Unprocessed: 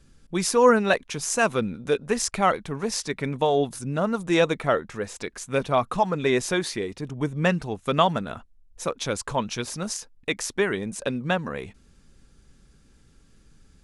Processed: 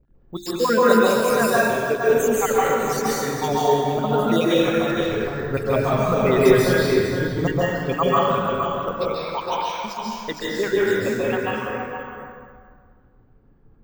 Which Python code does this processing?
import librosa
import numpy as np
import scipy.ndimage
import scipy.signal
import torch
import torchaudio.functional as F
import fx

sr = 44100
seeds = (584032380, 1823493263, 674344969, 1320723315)

y = fx.spec_dropout(x, sr, seeds[0], share_pct=50)
y = fx.hum_notches(y, sr, base_hz=50, count=7)
y = y + 10.0 ** (-6.0 / 20.0) * np.pad(y, (int(464 * sr / 1000.0), 0))[:len(y)]
y = fx.dmg_crackle(y, sr, seeds[1], per_s=84.0, level_db=-43.0)
y = fx.env_lowpass(y, sr, base_hz=710.0, full_db=-23.0)
y = fx.low_shelf(y, sr, hz=180.0, db=11.0, at=(4.92, 7.38))
y = fx.rev_plate(y, sr, seeds[2], rt60_s=1.8, hf_ratio=0.7, predelay_ms=120, drr_db=-6.5)
y = np.repeat(y[::2], 2)[:len(y)]
y = F.gain(torch.from_numpy(y), -1.0).numpy()